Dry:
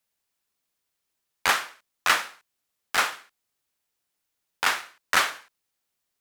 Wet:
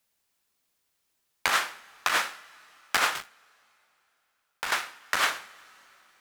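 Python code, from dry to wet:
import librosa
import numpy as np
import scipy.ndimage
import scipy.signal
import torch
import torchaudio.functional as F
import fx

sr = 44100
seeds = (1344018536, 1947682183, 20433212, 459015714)

y = fx.rev_double_slope(x, sr, seeds[0], early_s=0.26, late_s=3.5, knee_db=-19, drr_db=19.0)
y = fx.leveller(y, sr, passes=3, at=(3.15, 4.71))
y = fx.over_compress(y, sr, threshold_db=-25.0, ratio=-1.0)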